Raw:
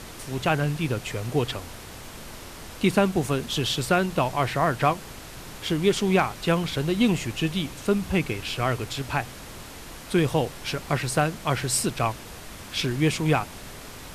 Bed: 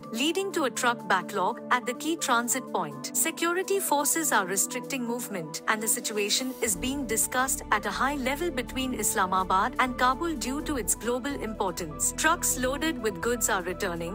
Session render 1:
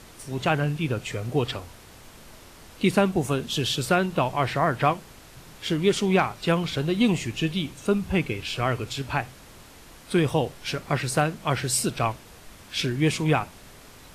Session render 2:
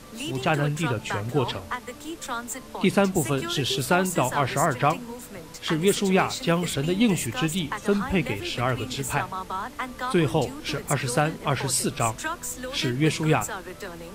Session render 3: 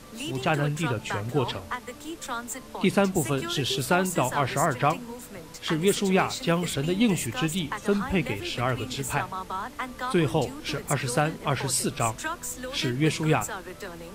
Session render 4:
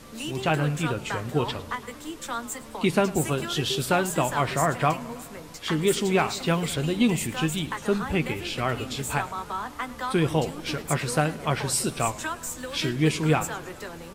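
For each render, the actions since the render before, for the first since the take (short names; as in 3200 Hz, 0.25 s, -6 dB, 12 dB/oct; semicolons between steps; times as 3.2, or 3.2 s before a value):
noise print and reduce 7 dB
add bed -7 dB
gain -1.5 dB
doubler 13 ms -11 dB; warbling echo 0.106 s, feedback 68%, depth 162 cents, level -19 dB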